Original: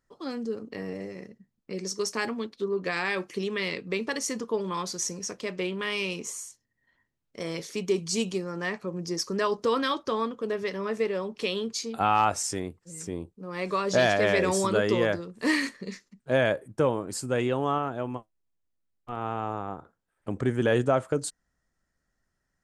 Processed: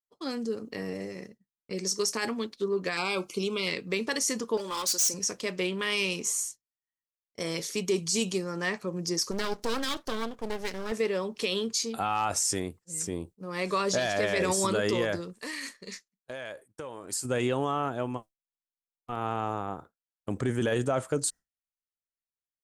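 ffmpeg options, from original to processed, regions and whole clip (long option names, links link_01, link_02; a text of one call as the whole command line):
ffmpeg -i in.wav -filter_complex "[0:a]asettb=1/sr,asplit=3[link_01][link_02][link_03];[link_01]atrim=end=2.974[link_04];[link_02]atrim=start=2.97:end=3.67,asetpts=PTS-STARTPTS,afade=type=in:duration=0.004:curve=qsin,afade=type=out:start_time=0.696:duration=0.004:curve=qsin,asuperstop=centerf=1800:order=8:qfactor=3,bandreject=frequency=50:width_type=h:width=6,bandreject=frequency=100:width_type=h:width=6,bandreject=frequency=150:width_type=h:width=6[link_05];[link_03]atrim=start=3.666[link_06];[link_04][link_05]acrossfade=duration=0.004:curve1=hsin:curve2=qsin[link_07];[link_07][link_06]acrossfade=duration=0.004:curve1=qsin:curve2=hsin,asettb=1/sr,asplit=3[link_08][link_09][link_10];[link_08]atrim=end=4.574[link_11];[link_09]atrim=start=4.57:end=5.14,asetpts=PTS-STARTPTS,afade=type=in:duration=0.004:curve=qsin,afade=type=out:start_time=0.566:duration=0.004:curve=qsin,bass=frequency=250:gain=-13,treble=frequency=4000:gain=7,aecho=1:1:3.5:0.41,atrim=end_sample=25137,volume=30dB,asoftclip=hard,volume=-30dB[link_12];[link_10]atrim=start=5.136[link_13];[link_11][link_12]acrossfade=duration=0.004:curve1=hsin:curve2=qsin[link_14];[link_14][link_13]acrossfade=duration=0.004:curve1=qsin:curve2=hsin,asettb=1/sr,asplit=3[link_15][link_16][link_17];[link_15]atrim=end=9.314[link_18];[link_16]atrim=start=9.31:end=10.92,asetpts=PTS-STARTPTS,afade=type=in:duration=0.004:curve=qsin,afade=type=out:start_time=1.606:duration=0.004:curve=qsin,equalizer=frequency=920:width=1.5:gain=-3.5,aeval=exprs='max(val(0),0)':channel_layout=same[link_19];[link_17]atrim=start=10.916[link_20];[link_18][link_19]acrossfade=duration=0.004:curve1=hsin:curve2=qsin[link_21];[link_21][link_20]acrossfade=duration=0.004:curve1=qsin:curve2=hsin,asettb=1/sr,asplit=3[link_22][link_23][link_24];[link_22]atrim=end=15.334[link_25];[link_23]atrim=start=15.33:end=17.25,asetpts=PTS-STARTPTS,afade=type=in:duration=0.004:curve=qsin,afade=type=out:start_time=1.916:duration=0.004:curve=qsin,equalizer=frequency=140:width=0.39:gain=-9.5,acompressor=threshold=-35dB:ratio=8:attack=3.2:release=140:knee=1:detection=peak[link_26];[link_24]atrim=start=17.246[link_27];[link_25][link_26]acrossfade=duration=0.004:curve1=hsin:curve2=qsin[link_28];[link_28][link_27]acrossfade=duration=0.004:curve1=qsin:curve2=hsin,agate=range=-33dB:threshold=-41dB:ratio=3:detection=peak,highshelf=frequency=4600:gain=10.5,alimiter=limit=-18dB:level=0:latency=1:release=15" out.wav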